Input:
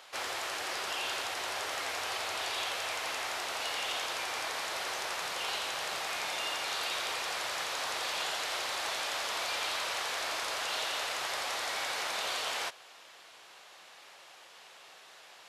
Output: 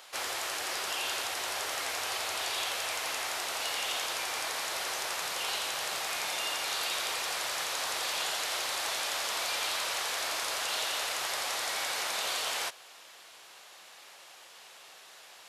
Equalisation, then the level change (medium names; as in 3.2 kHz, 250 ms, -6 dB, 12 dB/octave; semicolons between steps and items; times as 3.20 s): treble shelf 6.9 kHz +9.5 dB; 0.0 dB